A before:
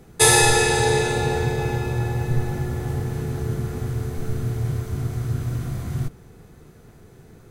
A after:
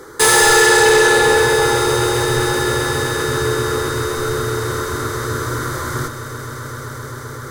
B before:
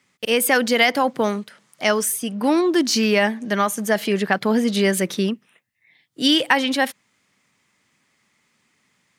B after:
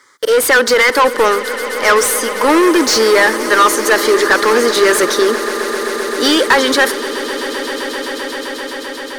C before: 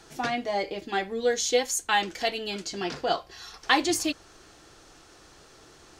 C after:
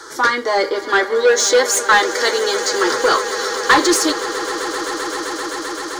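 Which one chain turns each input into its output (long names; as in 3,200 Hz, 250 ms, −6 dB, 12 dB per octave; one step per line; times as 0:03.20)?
phaser with its sweep stopped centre 710 Hz, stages 6
mid-hump overdrive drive 27 dB, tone 3,200 Hz, clips at −3.5 dBFS
low-shelf EQ 460 Hz −4.5 dB
echo that builds up and dies away 130 ms, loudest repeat 8, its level −17.5 dB
level +3 dB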